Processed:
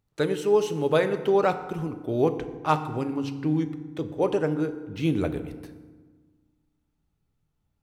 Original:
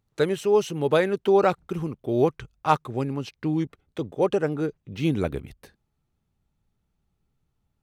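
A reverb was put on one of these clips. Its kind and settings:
feedback delay network reverb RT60 1.4 s, low-frequency decay 1.35×, high-frequency decay 0.6×, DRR 8.5 dB
level −2 dB

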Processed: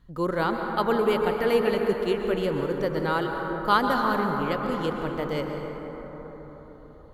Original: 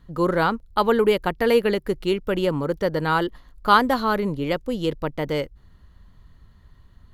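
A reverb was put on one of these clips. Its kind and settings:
dense smooth reverb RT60 5 s, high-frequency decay 0.3×, pre-delay 105 ms, DRR 2.5 dB
level −5.5 dB

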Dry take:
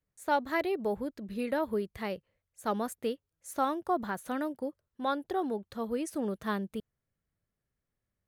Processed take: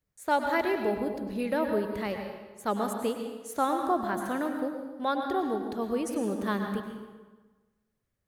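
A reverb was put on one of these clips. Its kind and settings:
dense smooth reverb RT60 1.3 s, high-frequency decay 0.75×, pre-delay 90 ms, DRR 4 dB
level +2 dB

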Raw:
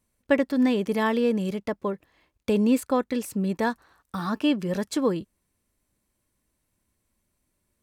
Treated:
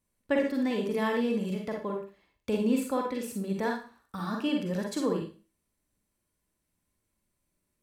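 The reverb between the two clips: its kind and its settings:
four-comb reverb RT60 0.36 s, DRR 0.5 dB
level −7 dB

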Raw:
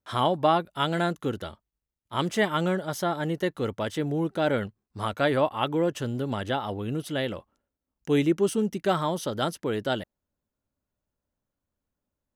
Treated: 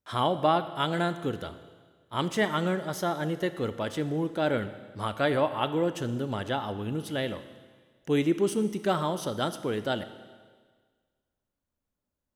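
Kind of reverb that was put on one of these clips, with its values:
four-comb reverb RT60 1.6 s, combs from 26 ms, DRR 11.5 dB
level −2 dB

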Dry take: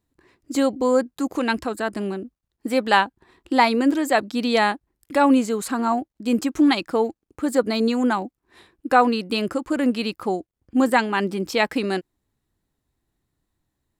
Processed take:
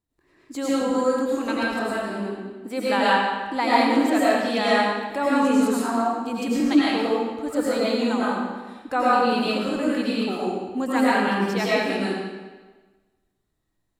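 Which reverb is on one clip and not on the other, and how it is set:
comb and all-pass reverb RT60 1.3 s, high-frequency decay 0.9×, pre-delay 65 ms, DRR −8.5 dB
level −9 dB

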